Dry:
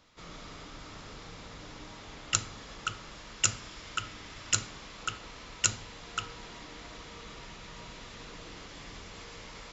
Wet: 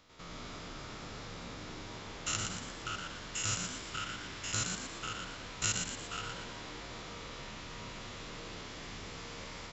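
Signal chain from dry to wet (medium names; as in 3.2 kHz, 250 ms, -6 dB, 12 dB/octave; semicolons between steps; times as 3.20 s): spectrogram pixelated in time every 100 ms; frequency-shifting echo 117 ms, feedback 47%, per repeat +73 Hz, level -5 dB; trim +1 dB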